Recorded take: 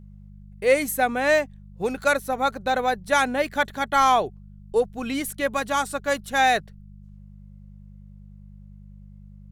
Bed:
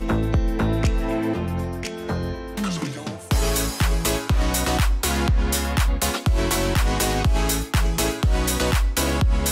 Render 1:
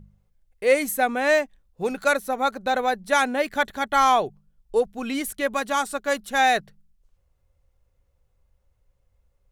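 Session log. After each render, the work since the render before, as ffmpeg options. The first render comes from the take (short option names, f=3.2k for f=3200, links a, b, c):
-af "bandreject=f=50:t=h:w=4,bandreject=f=100:t=h:w=4,bandreject=f=150:t=h:w=4,bandreject=f=200:t=h:w=4"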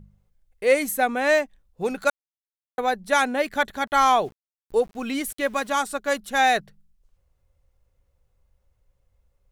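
-filter_complex "[0:a]asettb=1/sr,asplit=3[a][b][c];[a]atrim=end=3.874[d];[b]atrim=start=3.87:end=5.69,asetpts=PTS-STARTPTS,afade=t=in:d=0.004:c=qsin,afade=t=out:st=1.816:d=0.004:c=qsin,aeval=exprs='val(0)*gte(abs(val(0)),0.00447)':c=same[e];[c]atrim=start=5.686[f];[d][e]acrossfade=d=0.004:c1=hsin:c2=qsin[g];[g][f]acrossfade=d=0.004:c1=qsin:c2=hsin,asplit=3[h][i][j];[h]atrim=end=2.1,asetpts=PTS-STARTPTS,afade=t=out:st=2.096:d=0.004:c=hsin[k];[i]atrim=start=2.1:end=2.78,asetpts=PTS-STARTPTS,volume=0[l];[j]atrim=start=2.78,asetpts=PTS-STARTPTS,afade=t=in:d=0.004:c=hsin[m];[k][l][m]concat=n=3:v=0:a=1"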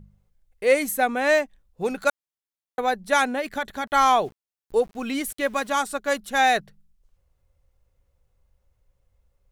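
-filter_complex "[0:a]asplit=3[a][b][c];[a]afade=t=out:st=3.26:d=0.02[d];[b]acompressor=threshold=-22dB:ratio=6:attack=3.2:release=140:knee=1:detection=peak,afade=t=in:st=3.26:d=0.02,afade=t=out:st=3.84:d=0.02[e];[c]afade=t=in:st=3.84:d=0.02[f];[d][e][f]amix=inputs=3:normalize=0"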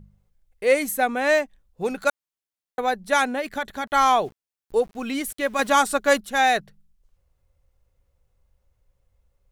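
-filter_complex "[0:a]asettb=1/sr,asplit=3[a][b][c];[a]atrim=end=5.594[d];[b]atrim=start=5.59:end=6.21,asetpts=PTS-STARTPTS,afade=t=in:d=0.004:c=qsin,afade=t=out:st=0.616:d=0.004:c=qsin,acontrast=54[e];[c]atrim=start=6.206[f];[d][e]acrossfade=d=0.004:c1=hsin:c2=qsin[g];[g][f]acrossfade=d=0.004:c1=qsin:c2=hsin"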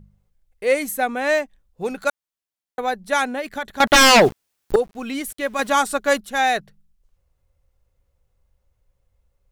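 -filter_complex "[0:a]asettb=1/sr,asplit=3[a][b][c];[a]atrim=end=3.804[d];[b]atrim=start=3.8:end=4.76,asetpts=PTS-STARTPTS,afade=t=in:d=0.004:c=qsin,afade=t=out:st=0.956:d=0.004:c=qsin,aeval=exprs='0.422*sin(PI/2*4.47*val(0)/0.422)':c=same[e];[c]atrim=start=4.756[f];[d][e]acrossfade=d=0.004:c1=hsin:c2=qsin[g];[g][f]acrossfade=d=0.004:c1=qsin:c2=hsin"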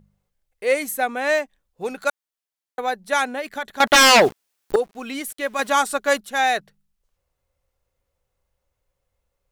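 -af "lowshelf=f=180:g=-12"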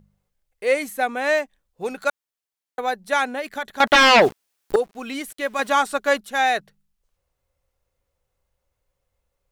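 -filter_complex "[0:a]acrossover=split=4500[a][b];[b]acompressor=threshold=-35dB:ratio=4:attack=1:release=60[c];[a][c]amix=inputs=2:normalize=0"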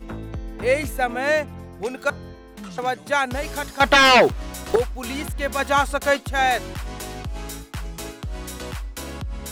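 -filter_complex "[1:a]volume=-11.5dB[a];[0:a][a]amix=inputs=2:normalize=0"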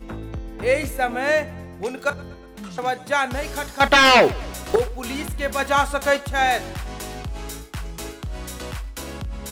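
-filter_complex "[0:a]asplit=2[a][b];[b]adelay=34,volume=-14dB[c];[a][c]amix=inputs=2:normalize=0,aecho=1:1:121|242|363|484:0.075|0.0405|0.0219|0.0118"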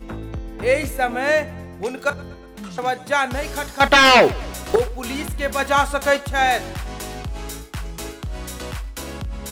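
-af "volume=1.5dB"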